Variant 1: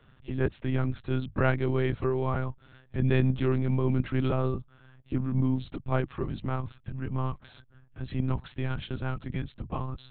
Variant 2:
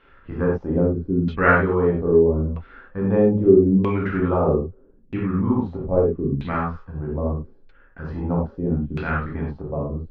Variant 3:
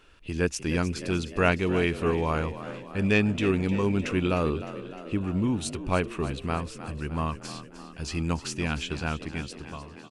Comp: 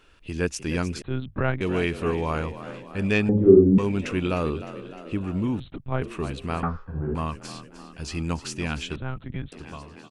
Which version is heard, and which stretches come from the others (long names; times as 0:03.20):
3
0:01.02–0:01.61: punch in from 1
0:03.29–0:03.78: punch in from 2
0:05.60–0:06.02: punch in from 1
0:06.63–0:07.15: punch in from 2
0:08.96–0:09.52: punch in from 1